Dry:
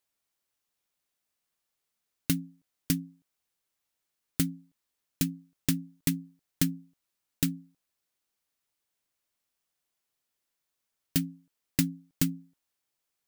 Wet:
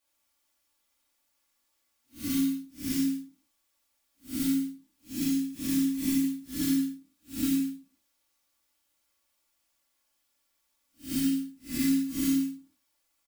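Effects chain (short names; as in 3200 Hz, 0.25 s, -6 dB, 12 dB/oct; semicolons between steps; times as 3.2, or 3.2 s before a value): time blur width 0.169 s; comb 3.5 ms, depth 79%; non-linear reverb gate 0.22 s falling, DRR -6.5 dB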